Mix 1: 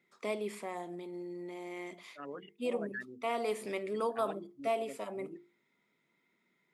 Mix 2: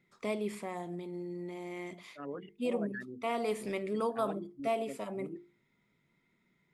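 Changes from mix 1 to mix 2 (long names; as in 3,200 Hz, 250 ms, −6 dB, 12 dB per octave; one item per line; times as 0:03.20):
first voice: remove high-pass filter 270 Hz 12 dB per octave
second voice: add spectral tilt −2.5 dB per octave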